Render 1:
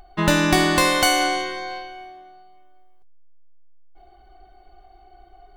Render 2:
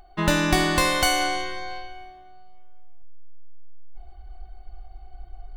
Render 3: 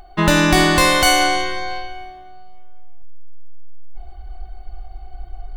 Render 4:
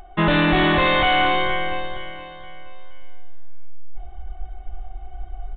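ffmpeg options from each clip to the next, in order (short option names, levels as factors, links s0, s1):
-af "asubboost=boost=7.5:cutoff=130,volume=0.708"
-af "alimiter=level_in=2.82:limit=0.891:release=50:level=0:latency=1,volume=0.891"
-af "aecho=1:1:470|940|1410|1880:0.211|0.0845|0.0338|0.0135,asoftclip=type=hard:threshold=0.211,aresample=8000,aresample=44100"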